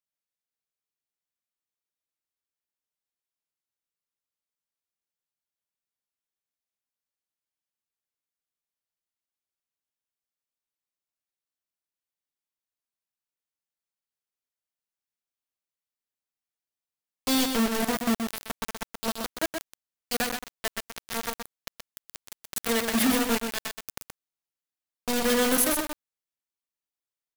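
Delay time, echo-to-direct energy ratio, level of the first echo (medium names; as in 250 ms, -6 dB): 125 ms, -6.0 dB, -6.0 dB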